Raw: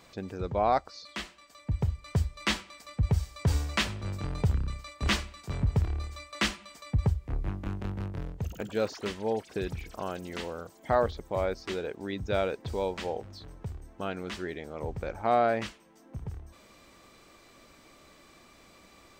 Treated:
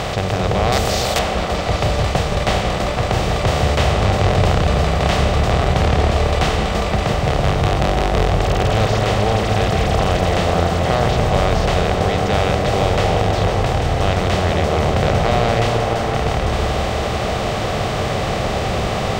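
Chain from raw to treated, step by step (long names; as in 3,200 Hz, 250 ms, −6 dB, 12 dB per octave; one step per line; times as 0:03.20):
compressor on every frequency bin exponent 0.2
0:00.72–0:01.19: RIAA equalisation recording
echo whose low-pass opens from repeat to repeat 166 ms, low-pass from 400 Hz, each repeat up 1 octave, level 0 dB
0:05.73–0:06.19: highs frequency-modulated by the lows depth 0.34 ms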